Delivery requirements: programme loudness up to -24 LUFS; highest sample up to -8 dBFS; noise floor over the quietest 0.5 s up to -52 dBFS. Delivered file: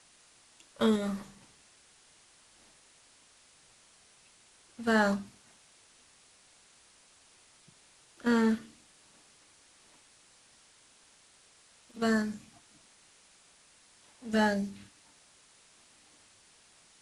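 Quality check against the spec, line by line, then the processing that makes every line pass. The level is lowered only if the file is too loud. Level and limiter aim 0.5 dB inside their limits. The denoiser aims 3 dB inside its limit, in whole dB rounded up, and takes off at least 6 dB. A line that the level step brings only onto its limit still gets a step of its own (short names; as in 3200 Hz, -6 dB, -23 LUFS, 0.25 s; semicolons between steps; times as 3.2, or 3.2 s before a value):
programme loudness -30.0 LUFS: OK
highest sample -15.0 dBFS: OK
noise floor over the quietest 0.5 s -62 dBFS: OK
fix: none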